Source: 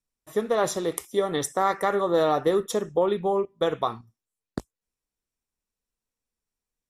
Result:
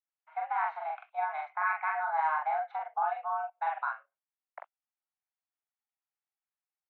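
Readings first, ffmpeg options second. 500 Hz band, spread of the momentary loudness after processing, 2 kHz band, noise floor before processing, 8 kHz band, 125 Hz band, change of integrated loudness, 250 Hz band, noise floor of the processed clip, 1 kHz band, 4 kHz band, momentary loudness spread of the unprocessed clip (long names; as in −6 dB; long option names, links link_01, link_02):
−19.0 dB, 12 LU, +1.5 dB, below −85 dBFS, below −40 dB, below −40 dB, −7.5 dB, below −40 dB, below −85 dBFS, −1.0 dB, below −25 dB, 14 LU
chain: -filter_complex "[0:a]highpass=frequency=400:width_type=q:width=0.5412,highpass=frequency=400:width_type=q:width=1.307,lowpass=frequency=2300:width_type=q:width=0.5176,lowpass=frequency=2300:width_type=q:width=0.7071,lowpass=frequency=2300:width_type=q:width=1.932,afreqshift=320,asplit=2[link_01][link_02];[link_02]adelay=43,volume=-2dB[link_03];[link_01][link_03]amix=inputs=2:normalize=0,volume=-8.5dB"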